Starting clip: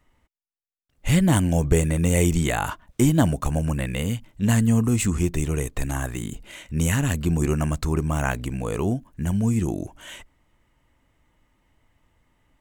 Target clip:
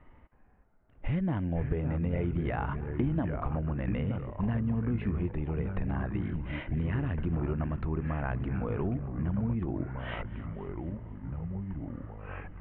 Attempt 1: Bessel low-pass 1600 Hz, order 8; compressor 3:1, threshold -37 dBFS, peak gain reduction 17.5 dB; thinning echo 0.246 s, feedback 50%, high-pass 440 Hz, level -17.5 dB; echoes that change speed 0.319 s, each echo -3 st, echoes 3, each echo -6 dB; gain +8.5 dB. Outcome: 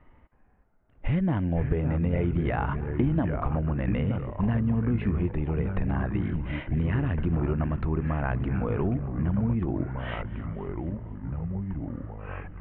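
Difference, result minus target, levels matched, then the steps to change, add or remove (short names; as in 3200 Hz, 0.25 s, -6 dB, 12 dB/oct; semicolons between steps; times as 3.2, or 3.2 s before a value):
compressor: peak gain reduction -4.5 dB
change: compressor 3:1, threshold -44 dBFS, peak gain reduction 22 dB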